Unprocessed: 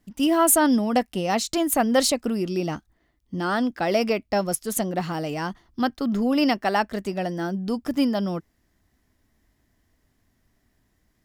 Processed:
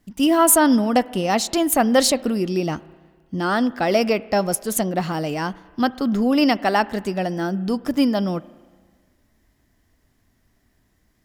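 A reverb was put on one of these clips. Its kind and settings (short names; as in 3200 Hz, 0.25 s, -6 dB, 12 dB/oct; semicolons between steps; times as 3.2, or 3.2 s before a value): spring tank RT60 1.6 s, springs 32/37 ms, chirp 75 ms, DRR 19 dB; gain +3.5 dB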